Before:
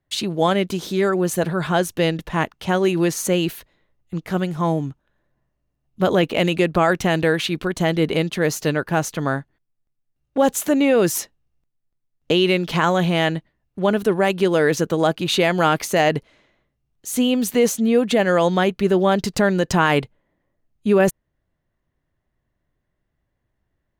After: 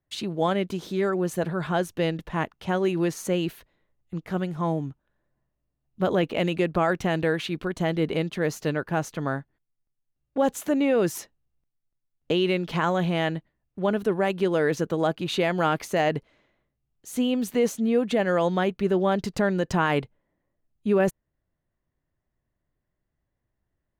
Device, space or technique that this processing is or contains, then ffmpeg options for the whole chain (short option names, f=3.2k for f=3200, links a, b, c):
behind a face mask: -af "highshelf=f=3.4k:g=-7,volume=-5.5dB"